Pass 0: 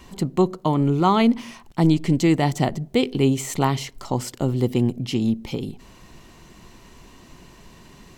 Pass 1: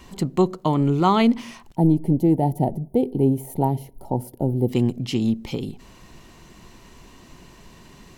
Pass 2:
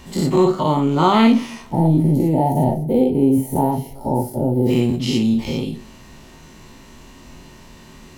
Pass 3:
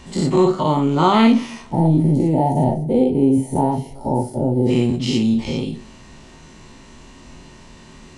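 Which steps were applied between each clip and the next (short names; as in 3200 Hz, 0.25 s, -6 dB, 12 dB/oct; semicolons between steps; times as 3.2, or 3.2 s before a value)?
spectral gain 1.76–4.68, 960–9100 Hz -22 dB
spectral dilation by 0.12 s; two-slope reverb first 0.29 s, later 2.3 s, from -27 dB, DRR 5 dB; gain -1.5 dB
downsampling 22050 Hz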